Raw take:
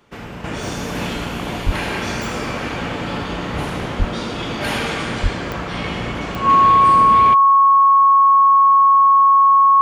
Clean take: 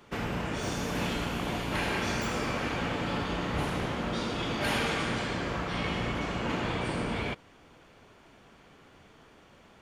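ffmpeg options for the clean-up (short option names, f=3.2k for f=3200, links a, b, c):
-filter_complex "[0:a]adeclick=t=4,bandreject=f=1.1k:w=30,asplit=3[a][b][c];[a]afade=t=out:st=1.65:d=0.02[d];[b]highpass=f=140:w=0.5412,highpass=f=140:w=1.3066,afade=t=in:st=1.65:d=0.02,afade=t=out:st=1.77:d=0.02[e];[c]afade=t=in:st=1.77:d=0.02[f];[d][e][f]amix=inputs=3:normalize=0,asplit=3[g][h][i];[g]afade=t=out:st=3.98:d=0.02[j];[h]highpass=f=140:w=0.5412,highpass=f=140:w=1.3066,afade=t=in:st=3.98:d=0.02,afade=t=out:st=4.1:d=0.02[k];[i]afade=t=in:st=4.1:d=0.02[l];[j][k][l]amix=inputs=3:normalize=0,asplit=3[m][n][o];[m]afade=t=out:st=5.22:d=0.02[p];[n]highpass=f=140:w=0.5412,highpass=f=140:w=1.3066,afade=t=in:st=5.22:d=0.02,afade=t=out:st=5.34:d=0.02[q];[o]afade=t=in:st=5.34:d=0.02[r];[p][q][r]amix=inputs=3:normalize=0,asetnsamples=n=441:p=0,asendcmd='0.44 volume volume -7dB',volume=0dB"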